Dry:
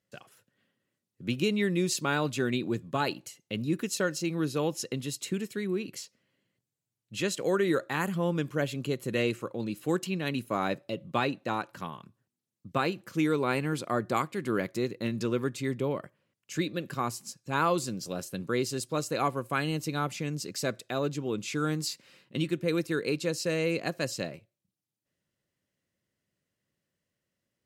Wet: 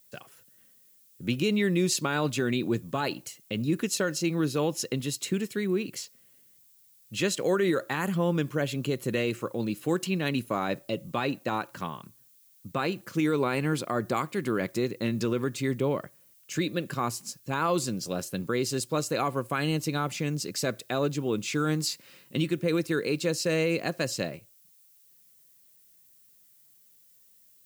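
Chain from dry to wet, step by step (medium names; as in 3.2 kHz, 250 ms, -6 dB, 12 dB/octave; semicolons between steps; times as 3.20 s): peak limiter -20 dBFS, peak gain reduction 6 dB; added noise violet -63 dBFS; trim +3.5 dB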